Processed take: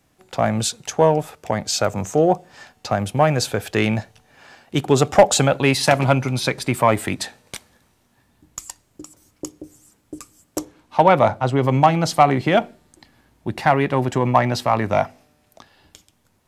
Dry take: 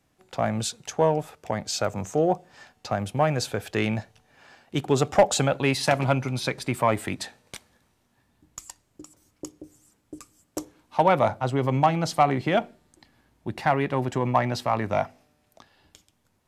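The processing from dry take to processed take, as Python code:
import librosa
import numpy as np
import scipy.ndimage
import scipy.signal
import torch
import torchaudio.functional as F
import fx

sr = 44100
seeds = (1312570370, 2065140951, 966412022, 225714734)

y = fx.high_shelf(x, sr, hz=8100.0, db=fx.steps((0.0, 3.0), (10.58, -5.5), (11.63, 2.0)))
y = y * librosa.db_to_amplitude(6.0)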